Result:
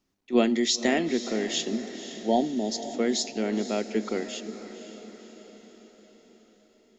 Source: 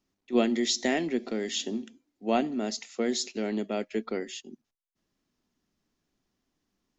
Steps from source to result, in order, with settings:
time-frequency box erased 0:01.74–0:02.93, 950–3,100 Hz
feedback delay with all-pass diffusion 516 ms, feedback 55%, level −12 dB
level +2.5 dB

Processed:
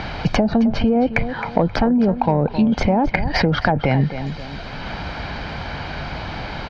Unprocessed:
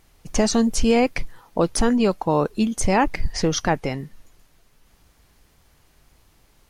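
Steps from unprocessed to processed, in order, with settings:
high-pass filter 66 Hz 6 dB per octave
treble cut that deepens with the level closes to 500 Hz, closed at −14.5 dBFS
Chebyshev low-pass filter 4,600 Hz, order 4
comb filter 1.3 ms, depth 44%
in parallel at +3 dB: compressor whose output falls as the input rises −32 dBFS, ratio −1
on the sum: soft clipping −6 dBFS, distortion −28 dB
on a send: tape delay 263 ms, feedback 24%, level −12.5 dB, low-pass 2,800 Hz
on the sum: multiband upward and downward compressor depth 70%
level +3.5 dB

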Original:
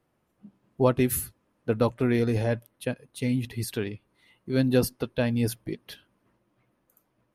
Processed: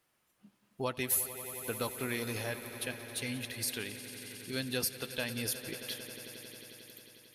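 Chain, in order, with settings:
tilt shelving filter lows −9.5 dB, about 1,200 Hz
downward compressor 1.5 to 1, threshold −40 dBFS, peak gain reduction 8.5 dB
echo that builds up and dies away 90 ms, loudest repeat 5, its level −16 dB
level −1.5 dB

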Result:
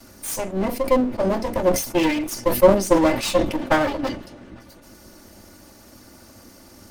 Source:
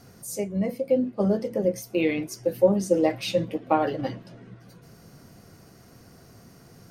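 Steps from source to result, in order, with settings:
lower of the sound and its delayed copy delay 3.4 ms
high-shelf EQ 4,600 Hz +4.5 dB
level that may fall only so fast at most 99 dB per second
level +5.5 dB

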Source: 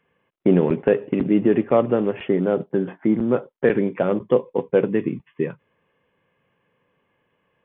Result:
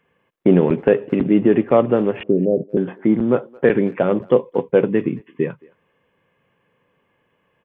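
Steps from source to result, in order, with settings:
0:02.23–0:02.77: Butterworth low-pass 640 Hz 48 dB per octave
far-end echo of a speakerphone 220 ms, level −25 dB
level +3 dB

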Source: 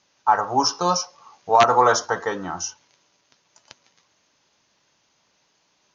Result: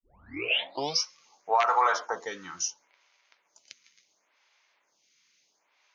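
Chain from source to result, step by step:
turntable start at the beginning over 1.04 s
high-pass filter 930 Hz 6 dB per octave
parametric band 2,200 Hz +8 dB 0.32 octaves
brickwall limiter −12.5 dBFS, peak gain reduction 9.5 dB
phaser with staggered stages 0.72 Hz

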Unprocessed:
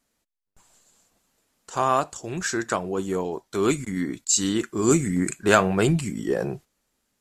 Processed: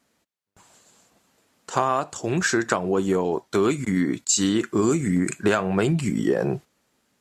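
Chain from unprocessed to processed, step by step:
high-pass filter 87 Hz
high-shelf EQ 5,800 Hz −8 dB
downward compressor 12 to 1, threshold −25 dBFS, peak gain reduction 14.5 dB
level +8 dB

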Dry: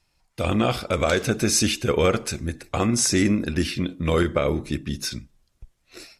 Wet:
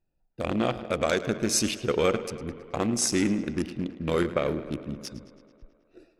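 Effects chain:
adaptive Wiener filter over 41 samples
parametric band 77 Hz −10 dB 1.5 octaves
tape delay 107 ms, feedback 78%, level −14 dB, low-pass 4,900 Hz
level −2.5 dB

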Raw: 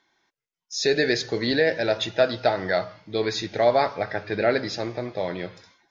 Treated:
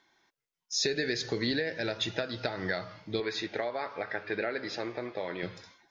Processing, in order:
0:03.20–0:05.43: bass and treble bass −13 dB, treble −11 dB
downward compressor 10 to 1, threshold −25 dBFS, peak gain reduction 11.5 dB
dynamic equaliser 670 Hz, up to −7 dB, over −42 dBFS, Q 1.5

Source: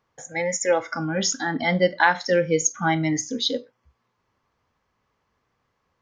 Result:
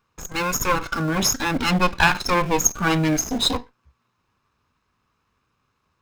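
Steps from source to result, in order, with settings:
lower of the sound and its delayed copy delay 0.76 ms
in parallel at −12 dB: comparator with hysteresis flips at −35.5 dBFS
on the sum: level +3.5 dB

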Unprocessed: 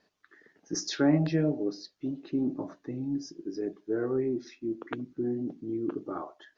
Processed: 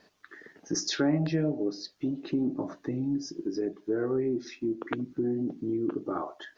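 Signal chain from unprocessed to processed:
downward compressor 2 to 1, threshold −41 dBFS, peak gain reduction 12 dB
level +9 dB

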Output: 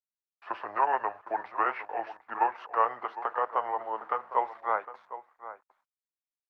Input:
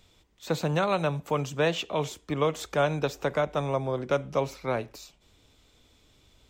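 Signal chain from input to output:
pitch glide at a constant tempo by −7 semitones ending unshifted
centre clipping without the shift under −46 dBFS
flat-topped band-pass 1,100 Hz, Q 1.4
slap from a distant wall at 130 metres, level −13 dB
level +8.5 dB
Opus 48 kbit/s 48,000 Hz

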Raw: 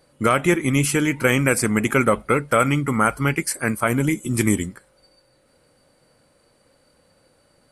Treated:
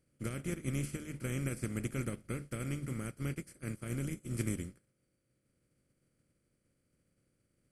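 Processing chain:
compressor on every frequency bin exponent 0.4
guitar amp tone stack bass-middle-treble 10-0-1
mains-hum notches 50/100/150 Hz
expander for the loud parts 2.5 to 1, over −50 dBFS

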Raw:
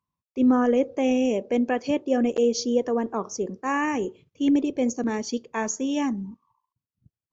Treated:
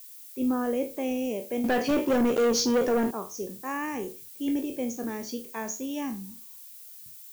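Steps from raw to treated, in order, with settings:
peak hold with a decay on every bin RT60 0.30 s
0:01.64–0:03.11: leveller curve on the samples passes 3
background noise violet −39 dBFS
level −7.5 dB

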